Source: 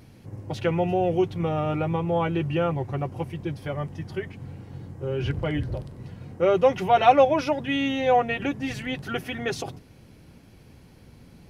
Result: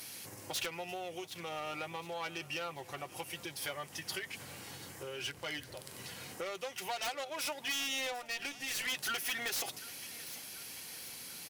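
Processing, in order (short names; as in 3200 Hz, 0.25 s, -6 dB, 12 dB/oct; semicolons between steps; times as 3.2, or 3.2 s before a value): tracing distortion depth 0.16 ms; compressor 20:1, threshold -35 dBFS, peak gain reduction 25.5 dB; differentiator; 8.12–8.88 tube stage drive 45 dB, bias 0.6; feedback echo 0.738 s, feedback 54%, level -20 dB; sine folder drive 15 dB, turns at -30 dBFS; gain +1 dB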